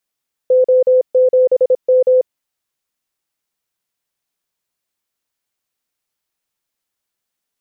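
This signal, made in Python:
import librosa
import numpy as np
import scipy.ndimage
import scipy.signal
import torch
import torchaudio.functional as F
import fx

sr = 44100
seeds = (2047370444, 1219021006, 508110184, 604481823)

y = fx.morse(sr, text='O7M', wpm=26, hz=510.0, level_db=-7.5)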